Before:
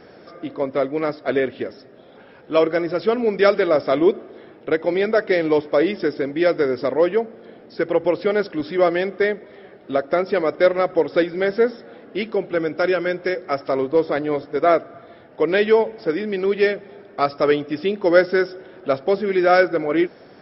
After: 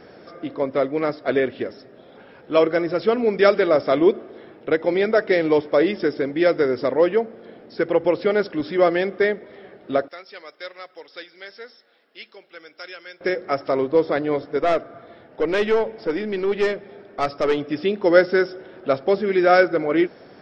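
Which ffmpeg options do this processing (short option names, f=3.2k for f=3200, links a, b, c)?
-filter_complex "[0:a]asettb=1/sr,asplit=3[a][b][c];[a]atrim=end=10.084[d];[b]atrim=start=10.08:end=13.21,asetpts=PTS-STARTPTS,afade=t=in:d=0.004:c=qsin,afade=t=out:st=3.126:d=0.004:c=qsin,aderivative[e];[c]atrim=start=13.206[f];[d][e]acrossfade=d=0.004:c1=hsin:c2=qsin[g];[g][f]acrossfade=d=0.004:c1=qsin:c2=hsin,asettb=1/sr,asplit=3[h][i][j];[h]atrim=end=14.594[k];[i]atrim=start=14.59:end=17.58,asetpts=PTS-STARTPTS,afade=t=in:d=0.004:c=qsin,afade=t=out:st=2.986:d=0.004:c=qsin,aeval=exprs='(tanh(4.47*val(0)+0.3)-tanh(0.3))/4.47':c=same[l];[j]atrim=start=17.576[m];[k][l]acrossfade=d=0.004:c1=hsin:c2=qsin[n];[n][m]acrossfade=d=0.004:c1=qsin:c2=hsin"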